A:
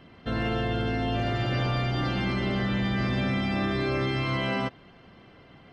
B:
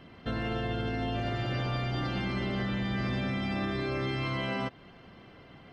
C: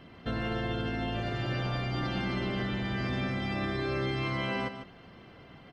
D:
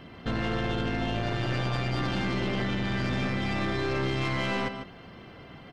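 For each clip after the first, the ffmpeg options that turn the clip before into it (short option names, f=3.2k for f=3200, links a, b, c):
-af "alimiter=limit=-23.5dB:level=0:latency=1:release=184"
-af "aecho=1:1:150:0.316"
-af "aeval=exprs='(tanh(35.5*val(0)+0.5)-tanh(0.5))/35.5':c=same,volume=7dB"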